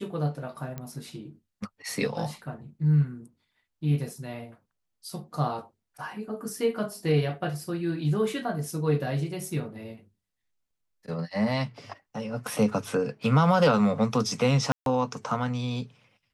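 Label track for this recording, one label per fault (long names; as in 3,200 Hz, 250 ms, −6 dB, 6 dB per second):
0.780000	0.780000	click −22 dBFS
14.720000	14.860000	drop-out 142 ms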